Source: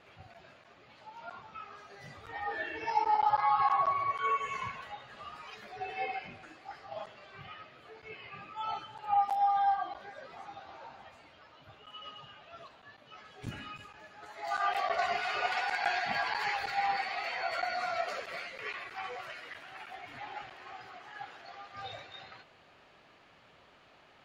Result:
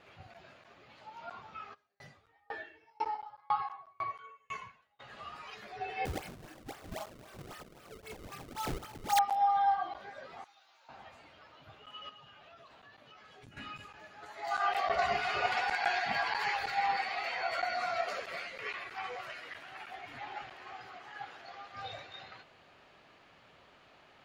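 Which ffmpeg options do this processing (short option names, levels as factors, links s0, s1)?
-filter_complex "[0:a]asplit=3[s0][s1][s2];[s0]afade=t=out:st=1.73:d=0.02[s3];[s1]aeval=exprs='val(0)*pow(10,-39*if(lt(mod(2*n/s,1),2*abs(2)/1000),1-mod(2*n/s,1)/(2*abs(2)/1000),(mod(2*n/s,1)-2*abs(2)/1000)/(1-2*abs(2)/1000))/20)':c=same,afade=t=in:st=1.73:d=0.02,afade=t=out:st=4.99:d=0.02[s4];[s2]afade=t=in:st=4.99:d=0.02[s5];[s3][s4][s5]amix=inputs=3:normalize=0,asettb=1/sr,asplit=3[s6][s7][s8];[s6]atrim=end=6.054[s9];[s7]atrim=start=6.05:end=9.19,asetpts=PTS-STARTPTS,afade=t=in:d=0.004:c=qsin,afade=t=out:st=3.136:d=0.004:c=qsin,acrusher=samples=30:mix=1:aa=0.000001:lfo=1:lforange=48:lforate=3.8[s10];[s8]atrim=start=9.186[s11];[s9][s10]acrossfade=d=0.004:c1=hsin:c2=qsin[s12];[s12][s11]acrossfade=d=0.004:c1=qsin:c2=hsin,asettb=1/sr,asplit=3[s13][s14][s15];[s13]atrim=end=10.444[s16];[s14]atrim=start=10.44:end=10.89,asetpts=PTS-STARTPTS,afade=t=in:d=0.004:c=qsin,afade=t=out:st=0.446:d=0.004:c=qsin,aderivative[s17];[s15]atrim=start=10.886[s18];[s16][s17]acrossfade=d=0.004:c1=hsin:c2=qsin[s19];[s19][s18]acrossfade=d=0.004:c1=qsin:c2=hsin,asettb=1/sr,asplit=3[s20][s21][s22];[s20]atrim=end=12.094[s23];[s21]atrim=start=12.09:end=13.57,asetpts=PTS-STARTPTS,afade=t=in:d=0.004:c=qsin,afade=t=out:st=1.476:d=0.004:c=qsin,acompressor=threshold=0.00251:ratio=6:attack=3.2:release=140:knee=1:detection=peak[s24];[s22]atrim=start=13.566[s25];[s23][s24]acrossfade=d=0.004:c1=hsin:c2=qsin[s26];[s26][s25]acrossfade=d=0.004:c1=qsin:c2=hsin,asettb=1/sr,asplit=3[s27][s28][s29];[s27]atrim=end=14.874[s30];[s28]atrim=start=14.87:end=15.73,asetpts=PTS-STARTPTS,afade=t=in:d=0.004:c=qsin,afade=t=out:st=0.856:d=0.004:c=qsin,lowshelf=f=220:g=11.5[s31];[s29]atrim=start=15.726[s32];[s30][s31]acrossfade=d=0.004:c1=hsin:c2=qsin[s33];[s33][s32]acrossfade=d=0.004:c1=qsin:c2=hsin"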